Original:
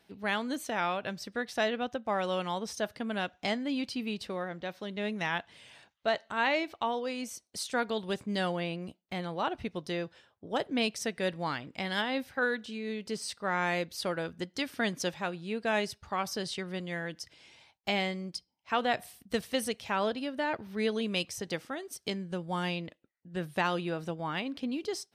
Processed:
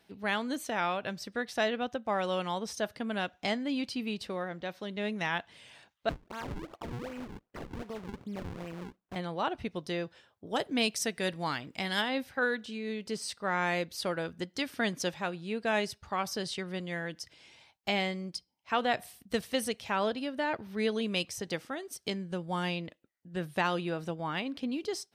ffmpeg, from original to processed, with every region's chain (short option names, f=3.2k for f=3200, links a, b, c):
-filter_complex "[0:a]asettb=1/sr,asplit=3[a][b][c];[a]atrim=end=6.094[d];[b]atrim=start=6.09:end=9.16,asetpts=PTS-STARTPTS,afade=t=in:d=0.004:c=qsin,afade=t=out:st=3.066:d=0.004:c=qsin,acompressor=threshold=-37dB:ratio=3:attack=3.2:release=140:knee=1:detection=peak,acrusher=samples=41:mix=1:aa=0.000001:lfo=1:lforange=65.6:lforate=2.6,lowpass=f=2.6k:p=1[e];[c]atrim=start=9.156[f];[d][e]acrossfade=d=0.004:c1=hsin:c2=qsin[g];[g][f]acrossfade=d=0.004:c1=qsin:c2=hsin,asettb=1/sr,asplit=3[h][i][j];[h]atrim=end=10.464[k];[i]atrim=start=10.46:end=12.09,asetpts=PTS-STARTPTS,afade=t=in:d=0.004:c=qsin,afade=t=out:st=1.626:d=0.004:c=qsin,highshelf=f=5.2k:g=8,bandreject=f=540:w=14[l];[j]atrim=start=12.086[m];[k][l]acrossfade=d=0.004:c1=hsin:c2=qsin[n];[n][m]acrossfade=d=0.004:c1=qsin:c2=hsin"